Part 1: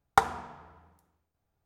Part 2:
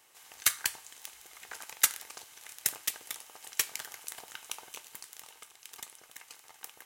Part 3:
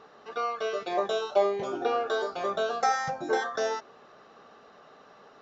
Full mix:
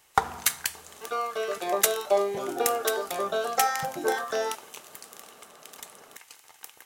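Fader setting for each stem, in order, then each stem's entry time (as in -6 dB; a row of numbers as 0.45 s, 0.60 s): -1.0 dB, +1.5 dB, +0.5 dB; 0.00 s, 0.00 s, 0.75 s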